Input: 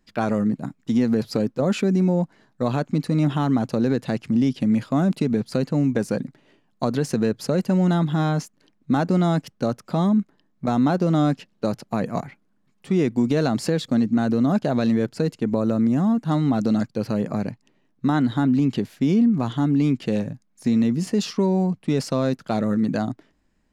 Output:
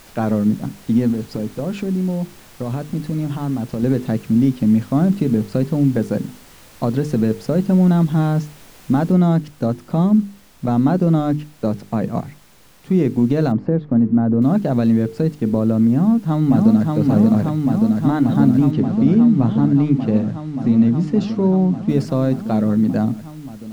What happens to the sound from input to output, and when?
1.1–3.83 compressor 2.5:1, threshold -25 dBFS
9.12 noise floor step -40 dB -46 dB
13.52–14.42 LPF 1200 Hz
15.92–16.9 echo throw 0.58 s, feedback 85%, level -2 dB
18.71–21.89 air absorption 81 m
whole clip: tilt -2.5 dB/oct; notches 50/100/150/200/250/300/350/400/450 Hz

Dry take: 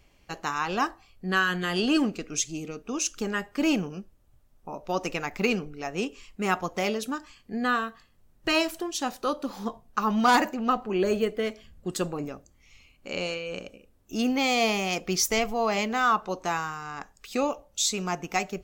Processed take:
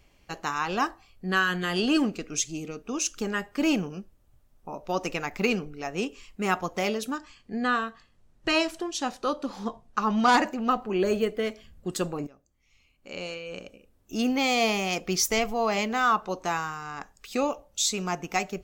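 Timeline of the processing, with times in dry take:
7.17–10.51 LPF 8500 Hz
12.27–14.21 fade in, from -17.5 dB

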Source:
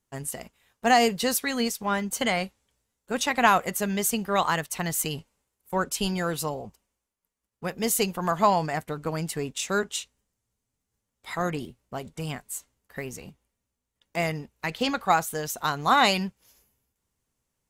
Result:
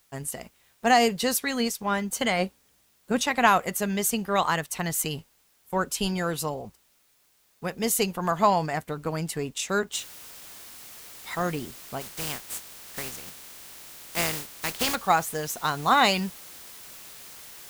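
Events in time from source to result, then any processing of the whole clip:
2.38–3.22 bell 410 Hz -> 140 Hz +8 dB 2.1 oct
9.93 noise floor step -65 dB -45 dB
12–14.94 spectral contrast lowered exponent 0.48

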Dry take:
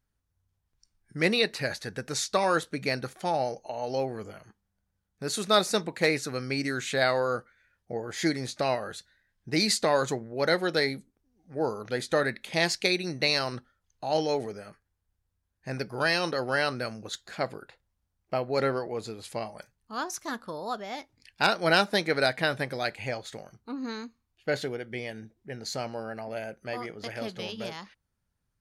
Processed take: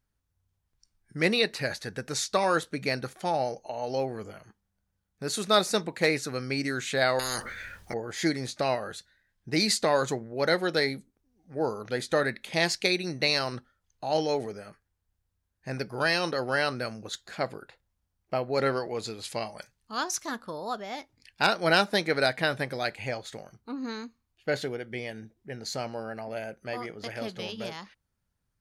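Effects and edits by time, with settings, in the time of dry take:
7.19–7.94 spectral compressor 10:1
18.66–20.26 bell 4600 Hz +6.5 dB 2.7 oct

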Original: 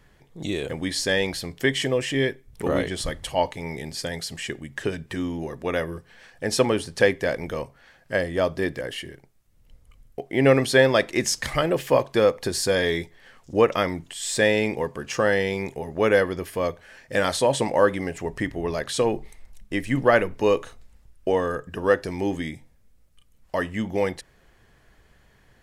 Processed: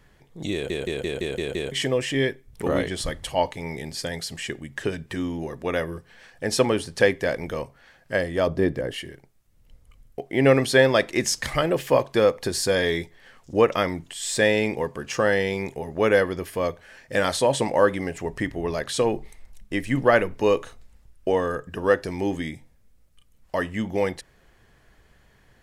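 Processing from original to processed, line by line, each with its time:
0.53 stutter in place 0.17 s, 7 plays
8.47–8.94 tilt shelf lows +6 dB

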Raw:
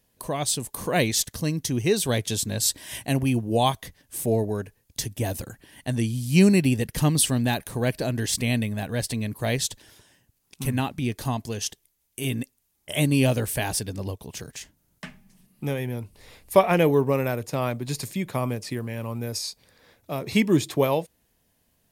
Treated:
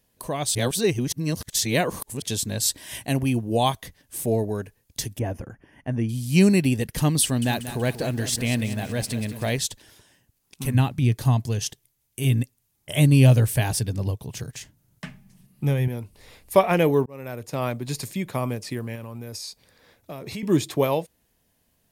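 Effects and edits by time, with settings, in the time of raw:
0.55–2.22 reverse
5.19–6.09 running mean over 11 samples
7.23–9.59 lo-fi delay 0.188 s, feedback 55%, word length 7-bit, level -11 dB
10.74–15.88 bell 120 Hz +11 dB 0.81 oct
17.06–17.64 fade in
18.95–20.43 compressor, threshold -31 dBFS

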